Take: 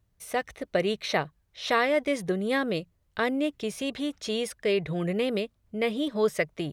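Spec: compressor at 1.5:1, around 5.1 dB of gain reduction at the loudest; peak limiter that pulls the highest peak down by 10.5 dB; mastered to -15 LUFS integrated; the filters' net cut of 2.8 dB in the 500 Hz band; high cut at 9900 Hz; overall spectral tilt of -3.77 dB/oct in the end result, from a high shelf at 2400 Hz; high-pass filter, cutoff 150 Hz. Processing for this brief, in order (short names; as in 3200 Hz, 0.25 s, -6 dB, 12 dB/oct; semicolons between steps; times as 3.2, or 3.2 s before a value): HPF 150 Hz; LPF 9900 Hz; bell 500 Hz -3.5 dB; high shelf 2400 Hz +5 dB; compressor 1.5:1, threshold -35 dBFS; gain +21 dB; limiter -4 dBFS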